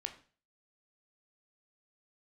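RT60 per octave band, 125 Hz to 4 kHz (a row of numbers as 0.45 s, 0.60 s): 0.45 s, 0.40 s, 0.40 s, 0.40 s, 0.40 s, 0.40 s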